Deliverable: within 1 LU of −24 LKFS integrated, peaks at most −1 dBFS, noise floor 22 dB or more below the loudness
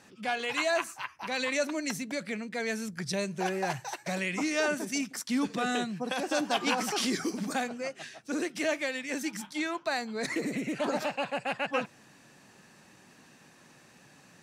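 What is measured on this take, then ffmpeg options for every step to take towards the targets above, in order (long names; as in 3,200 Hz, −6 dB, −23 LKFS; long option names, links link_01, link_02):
integrated loudness −31.5 LKFS; sample peak −14.5 dBFS; target loudness −24.0 LKFS
→ -af "volume=7.5dB"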